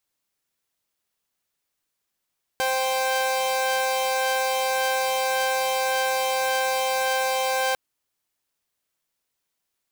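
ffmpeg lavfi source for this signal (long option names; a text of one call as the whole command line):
ffmpeg -f lavfi -i "aevalsrc='0.0794*((2*mod(523.25*t,1)-1)+(2*mod(783.99*t,1)-1))':duration=5.15:sample_rate=44100" out.wav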